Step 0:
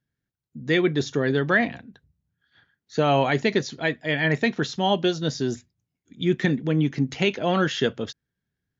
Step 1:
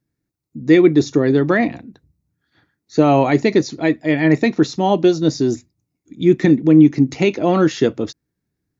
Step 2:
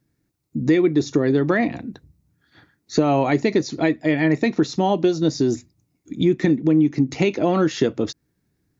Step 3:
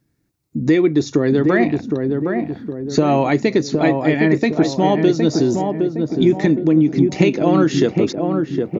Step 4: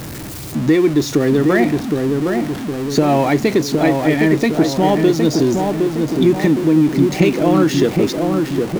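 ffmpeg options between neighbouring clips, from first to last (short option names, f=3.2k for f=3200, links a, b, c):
-af "equalizer=f=315:t=o:w=0.33:g=11,equalizer=f=1.6k:t=o:w=0.33:g=-9,equalizer=f=3.15k:t=o:w=0.33:g=-12,volume=5.5dB"
-af "acompressor=threshold=-25dB:ratio=3,volume=6.5dB"
-filter_complex "[0:a]asplit=2[a][b];[b]adelay=764,lowpass=f=1k:p=1,volume=-3.5dB,asplit=2[c][d];[d]adelay=764,lowpass=f=1k:p=1,volume=0.5,asplit=2[e][f];[f]adelay=764,lowpass=f=1k:p=1,volume=0.5,asplit=2[g][h];[h]adelay=764,lowpass=f=1k:p=1,volume=0.5,asplit=2[i][j];[j]adelay=764,lowpass=f=1k:p=1,volume=0.5,asplit=2[k][l];[l]adelay=764,lowpass=f=1k:p=1,volume=0.5,asplit=2[m][n];[n]adelay=764,lowpass=f=1k:p=1,volume=0.5[o];[a][c][e][g][i][k][m][o]amix=inputs=8:normalize=0,volume=2.5dB"
-af "aeval=exprs='val(0)+0.5*0.0708*sgn(val(0))':c=same"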